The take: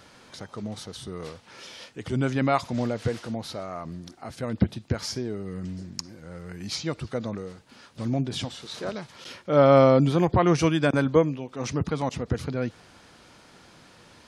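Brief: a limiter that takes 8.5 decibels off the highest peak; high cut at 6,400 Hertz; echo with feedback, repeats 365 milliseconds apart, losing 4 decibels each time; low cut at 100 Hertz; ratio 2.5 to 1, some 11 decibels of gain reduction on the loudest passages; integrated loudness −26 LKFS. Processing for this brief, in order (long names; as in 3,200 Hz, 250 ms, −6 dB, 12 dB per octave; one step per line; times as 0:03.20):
high-pass filter 100 Hz
low-pass filter 6,400 Hz
downward compressor 2.5 to 1, threshold −29 dBFS
brickwall limiter −22 dBFS
repeating echo 365 ms, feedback 63%, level −4 dB
level +7.5 dB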